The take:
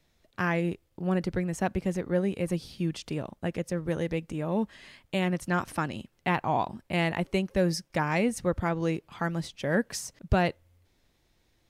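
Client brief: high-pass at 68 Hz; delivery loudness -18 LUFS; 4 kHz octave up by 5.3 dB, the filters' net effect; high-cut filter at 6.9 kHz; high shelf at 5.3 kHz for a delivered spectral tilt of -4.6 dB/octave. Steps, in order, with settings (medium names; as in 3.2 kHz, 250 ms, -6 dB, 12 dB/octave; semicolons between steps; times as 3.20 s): high-pass 68 Hz; low-pass 6.9 kHz; peaking EQ 4 kHz +6 dB; treble shelf 5.3 kHz +4.5 dB; trim +11.5 dB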